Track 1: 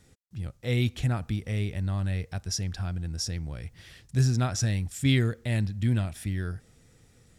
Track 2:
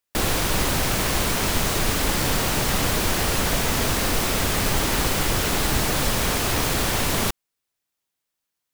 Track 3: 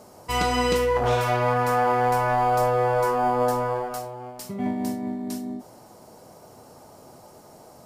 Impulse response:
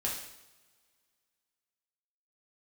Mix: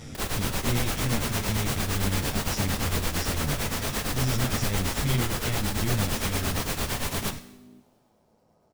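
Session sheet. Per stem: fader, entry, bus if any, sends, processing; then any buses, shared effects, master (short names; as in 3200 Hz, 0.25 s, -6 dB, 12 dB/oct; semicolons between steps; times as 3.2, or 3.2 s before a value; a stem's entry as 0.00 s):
-3.5 dB, 0.00 s, no send, per-bin compression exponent 0.4; AM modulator 110 Hz, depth 50%; ensemble effect
-5.0 dB, 0.00 s, send -9 dB, low shelf 440 Hz -5 dB; limiter -16 dBFS, peak gain reduction 5.5 dB; beating tremolo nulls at 8.8 Hz
-20.0 dB, 2.20 s, send -6.5 dB, compressor, threshold -31 dBFS, peak gain reduction 12.5 dB; Bessel low-pass 4600 Hz; AM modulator 110 Hz, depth 35%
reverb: on, pre-delay 3 ms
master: low shelf 300 Hz +5.5 dB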